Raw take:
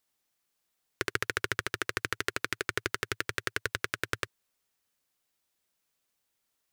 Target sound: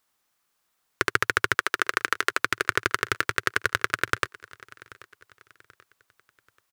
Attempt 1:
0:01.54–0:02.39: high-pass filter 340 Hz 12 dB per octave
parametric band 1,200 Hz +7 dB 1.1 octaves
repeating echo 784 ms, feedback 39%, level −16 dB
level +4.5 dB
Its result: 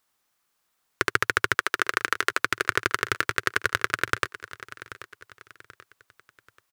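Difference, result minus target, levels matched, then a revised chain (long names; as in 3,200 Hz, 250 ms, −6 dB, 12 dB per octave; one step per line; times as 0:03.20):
echo-to-direct +6 dB
0:01.54–0:02.39: high-pass filter 340 Hz 12 dB per octave
parametric band 1,200 Hz +7 dB 1.1 octaves
repeating echo 784 ms, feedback 39%, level −22 dB
level +4.5 dB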